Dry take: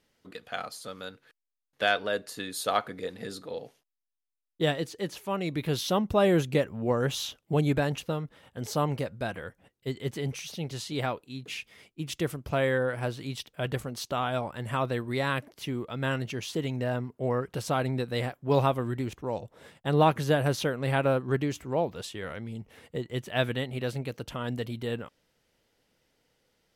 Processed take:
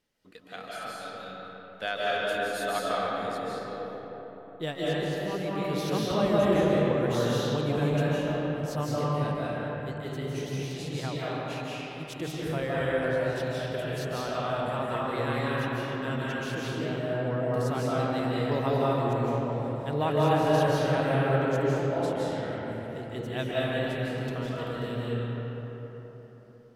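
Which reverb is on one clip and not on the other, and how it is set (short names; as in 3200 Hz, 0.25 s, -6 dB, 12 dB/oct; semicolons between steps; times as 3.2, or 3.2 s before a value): digital reverb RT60 4.2 s, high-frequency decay 0.45×, pre-delay 0.12 s, DRR -7.5 dB; gain -7.5 dB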